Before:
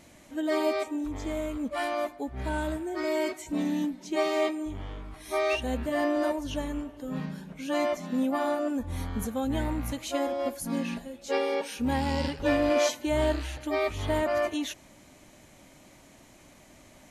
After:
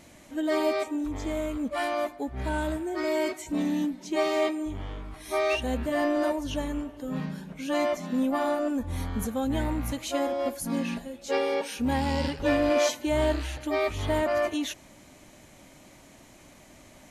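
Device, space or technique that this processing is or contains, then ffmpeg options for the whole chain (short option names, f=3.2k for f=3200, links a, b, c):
parallel distortion: -filter_complex "[0:a]asplit=2[a][b];[b]asoftclip=type=hard:threshold=-29.5dB,volume=-12dB[c];[a][c]amix=inputs=2:normalize=0"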